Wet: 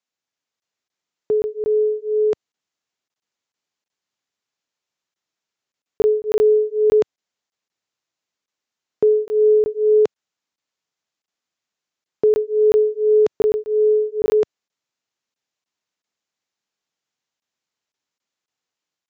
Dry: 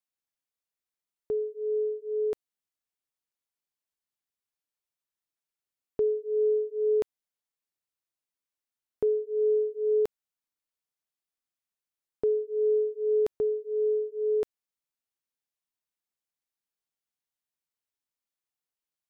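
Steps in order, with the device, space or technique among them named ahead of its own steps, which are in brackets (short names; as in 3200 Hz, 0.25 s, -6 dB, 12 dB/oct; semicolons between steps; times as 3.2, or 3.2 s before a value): call with lost packets (HPF 110 Hz 12 dB/oct; downsampling 16000 Hz; AGC gain up to 3 dB; packet loss packets of 20 ms random); gain +7.5 dB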